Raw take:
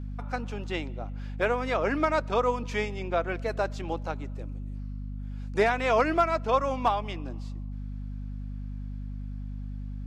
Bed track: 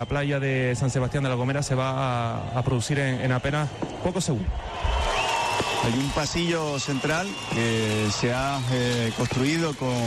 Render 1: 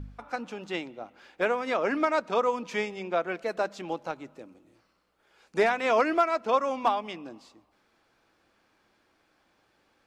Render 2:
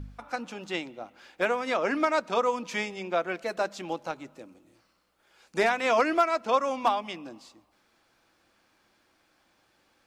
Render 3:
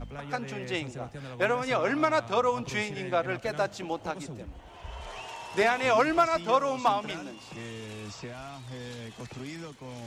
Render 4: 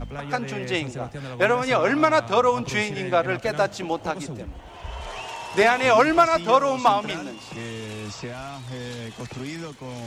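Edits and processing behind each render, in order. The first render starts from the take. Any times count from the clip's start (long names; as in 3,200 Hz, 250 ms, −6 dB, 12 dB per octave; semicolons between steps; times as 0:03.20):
hum removal 50 Hz, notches 5
high-shelf EQ 4,000 Hz +6.5 dB; notch filter 430 Hz, Q 12
mix in bed track −16.5 dB
level +6.5 dB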